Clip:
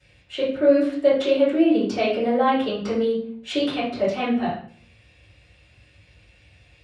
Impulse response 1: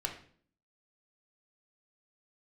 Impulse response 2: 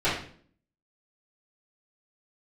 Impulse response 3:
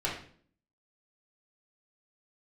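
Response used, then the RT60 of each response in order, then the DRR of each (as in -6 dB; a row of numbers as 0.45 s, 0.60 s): 2; 0.50 s, 0.50 s, 0.50 s; 1.0 dB, -14.5 dB, -6.5 dB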